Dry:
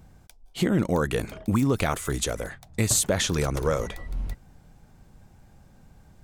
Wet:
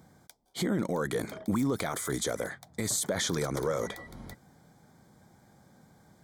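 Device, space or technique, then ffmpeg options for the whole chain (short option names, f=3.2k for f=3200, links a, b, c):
PA system with an anti-feedback notch: -af "highpass=160,asuperstop=centerf=2700:order=4:qfactor=3.6,alimiter=limit=-20.5dB:level=0:latency=1:release=14"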